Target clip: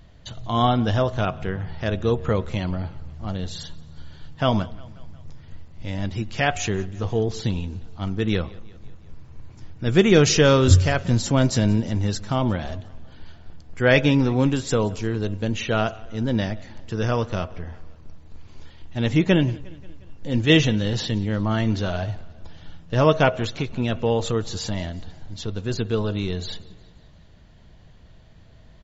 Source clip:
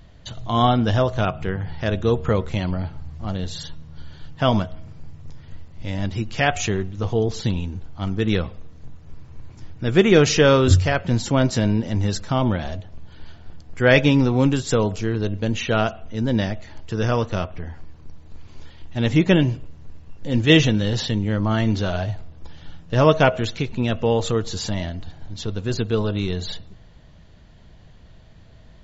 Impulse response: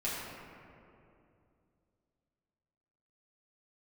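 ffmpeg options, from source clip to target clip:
-filter_complex "[0:a]asettb=1/sr,asplit=3[link_01][link_02][link_03];[link_01]atrim=end=9.864[link_04];[link_02]atrim=start=9.86:end=11.91,asetpts=PTS-STARTPTS,afade=type=in:duration=0.004:curve=qsin,afade=type=out:start_time=2.046:duration=0.004:curve=qsin,bass=frequency=250:gain=3,treble=frequency=4000:gain=5[link_05];[link_03]atrim=start=11.906[link_06];[link_04][link_05]acrossfade=duration=0.004:curve1=hsin:curve2=qsin[link_07];[link_07][link_06]acrossfade=duration=0.004:curve1=qsin:curve2=hsin,aecho=1:1:178|356|534|712:0.0708|0.0418|0.0246|0.0145,volume=-2dB"

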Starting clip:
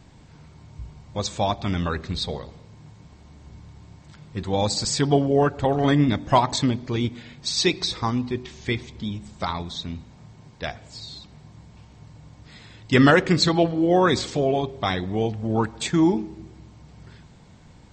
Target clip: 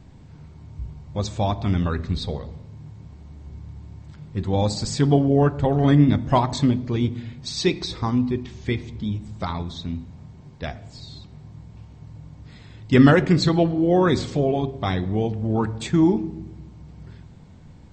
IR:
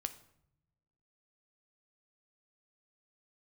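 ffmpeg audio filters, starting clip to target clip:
-filter_complex "[0:a]asplit=2[link_01][link_02];[1:a]atrim=start_sample=2205,lowshelf=frequency=490:gain=12,highshelf=frequency=6200:gain=-10.5[link_03];[link_02][link_03]afir=irnorm=-1:irlink=0,volume=0.5dB[link_04];[link_01][link_04]amix=inputs=2:normalize=0,volume=-8.5dB"

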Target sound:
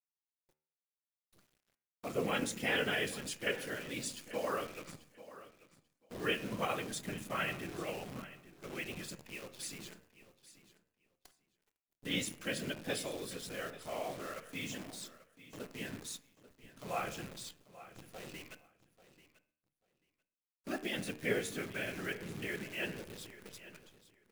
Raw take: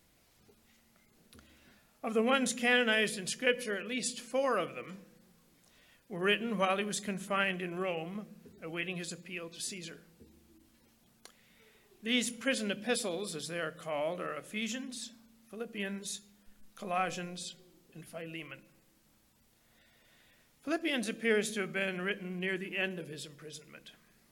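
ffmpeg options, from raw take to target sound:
ffmpeg -i in.wav -filter_complex "[0:a]afftfilt=real='hypot(re,im)*cos(2*PI*random(0))':imag='hypot(re,im)*sin(2*PI*random(1))':win_size=512:overlap=0.75,agate=range=-33dB:threshold=-59dB:ratio=3:detection=peak,acrusher=bits=9:dc=4:mix=0:aa=0.000001,bandreject=frequency=75.91:width_type=h:width=4,bandreject=frequency=151.82:width_type=h:width=4,bandreject=frequency=227.73:width_type=h:width=4,bandreject=frequency=303.64:width_type=h:width=4,bandreject=frequency=379.55:width_type=h:width=4,bandreject=frequency=455.46:width_type=h:width=4,bandreject=frequency=531.37:width_type=h:width=4,bandreject=frequency=607.28:width_type=h:width=4,bandreject=frequency=683.19:width_type=h:width=4,bandreject=frequency=759.1:width_type=h:width=4,bandreject=frequency=835.01:width_type=h:width=4,bandreject=frequency=910.92:width_type=h:width=4,bandreject=frequency=986.83:width_type=h:width=4,bandreject=frequency=1062.74:width_type=h:width=4,bandreject=frequency=1138.65:width_type=h:width=4,bandreject=frequency=1214.56:width_type=h:width=4,bandreject=frequency=1290.47:width_type=h:width=4,bandreject=frequency=1366.38:width_type=h:width=4,bandreject=frequency=1442.29:width_type=h:width=4,bandreject=frequency=1518.2:width_type=h:width=4,bandreject=frequency=1594.11:width_type=h:width=4,bandreject=frequency=1670.02:width_type=h:width=4,bandreject=frequency=1745.93:width_type=h:width=4,bandreject=frequency=1821.84:width_type=h:width=4,bandreject=frequency=1897.75:width_type=h:width=4,bandreject=frequency=1973.66:width_type=h:width=4,bandreject=frequency=2049.57:width_type=h:width=4,bandreject=frequency=2125.48:width_type=h:width=4,bandreject=frequency=2201.39:width_type=h:width=4,bandreject=frequency=2277.3:width_type=h:width=4,bandreject=frequency=2353.21:width_type=h:width=4,bandreject=frequency=2429.12:width_type=h:width=4,bandreject=frequency=2505.03:width_type=h:width=4,bandreject=frequency=2580.94:width_type=h:width=4,bandreject=frequency=2656.85:width_type=h:width=4,bandreject=frequency=2732.76:width_type=h:width=4,bandreject=frequency=2808.67:width_type=h:width=4,bandreject=frequency=2884.58:width_type=h:width=4,asplit=2[link_01][link_02];[link_02]aecho=0:1:839|1678:0.15|0.0239[link_03];[link_01][link_03]amix=inputs=2:normalize=0,volume=1dB" out.wav

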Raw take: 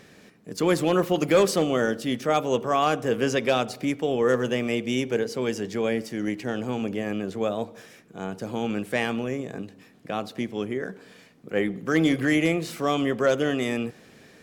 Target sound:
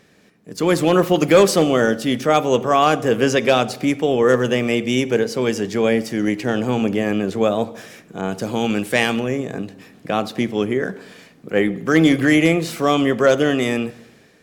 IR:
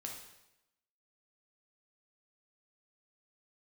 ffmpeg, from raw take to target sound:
-filter_complex "[0:a]dynaudnorm=framelen=110:gausssize=11:maxgain=13dB,asplit=2[link_01][link_02];[1:a]atrim=start_sample=2205[link_03];[link_02][link_03]afir=irnorm=-1:irlink=0,volume=-12.5dB[link_04];[link_01][link_04]amix=inputs=2:normalize=0,asettb=1/sr,asplit=3[link_05][link_06][link_07];[link_05]atrim=end=8.214[link_08];[link_06]atrim=start=8.21:end=9.2,asetpts=PTS-STARTPTS,afade=type=in:duration=0.004:curve=qsin,afade=type=out:start_time=0.986:duration=0.004:curve=qsin,adynamicequalizer=threshold=0.0355:dfrequency=2400:dqfactor=0.7:tfrequency=2400:tqfactor=0.7:attack=5:release=100:ratio=0.375:range=3:mode=boostabove:tftype=highshelf[link_09];[link_07]atrim=start=9.196[link_10];[link_08][link_09]acrossfade=duration=0.004:curve1=hsin:curve2=qsin[link_11];[link_11][link_10]acrossfade=duration=0.004:curve1=qsin:curve2=hsin,volume=-4dB"

